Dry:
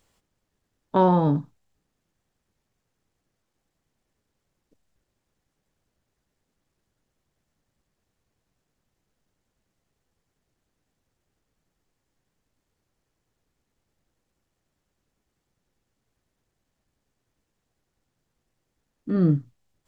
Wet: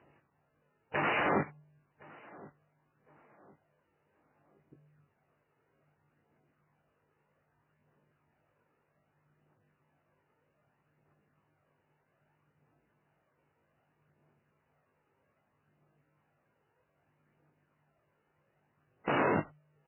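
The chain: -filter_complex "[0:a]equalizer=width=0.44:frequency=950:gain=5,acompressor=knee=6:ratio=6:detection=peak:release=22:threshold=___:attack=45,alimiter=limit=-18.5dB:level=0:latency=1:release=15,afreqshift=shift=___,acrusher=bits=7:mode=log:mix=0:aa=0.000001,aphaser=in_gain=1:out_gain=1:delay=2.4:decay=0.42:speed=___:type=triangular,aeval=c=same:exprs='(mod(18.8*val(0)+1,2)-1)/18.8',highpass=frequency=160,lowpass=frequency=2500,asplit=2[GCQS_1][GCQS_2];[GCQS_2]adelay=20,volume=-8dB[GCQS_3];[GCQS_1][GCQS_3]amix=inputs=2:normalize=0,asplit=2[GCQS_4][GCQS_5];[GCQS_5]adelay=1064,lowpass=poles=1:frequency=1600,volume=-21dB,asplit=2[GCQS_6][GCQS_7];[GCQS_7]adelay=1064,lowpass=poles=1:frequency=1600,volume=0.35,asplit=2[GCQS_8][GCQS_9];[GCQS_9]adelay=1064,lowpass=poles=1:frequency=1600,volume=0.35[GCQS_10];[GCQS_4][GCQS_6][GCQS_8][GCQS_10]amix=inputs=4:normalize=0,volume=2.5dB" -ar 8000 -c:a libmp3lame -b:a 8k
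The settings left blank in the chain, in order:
-26dB, -150, 0.63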